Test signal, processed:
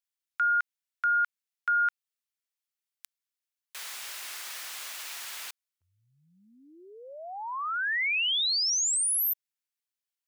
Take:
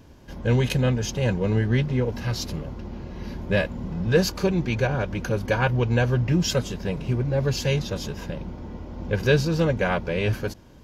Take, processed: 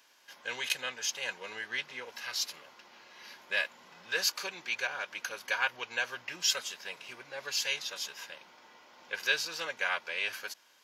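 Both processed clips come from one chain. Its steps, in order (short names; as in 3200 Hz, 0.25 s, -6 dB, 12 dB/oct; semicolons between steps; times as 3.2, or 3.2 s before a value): HPF 1500 Hz 12 dB/oct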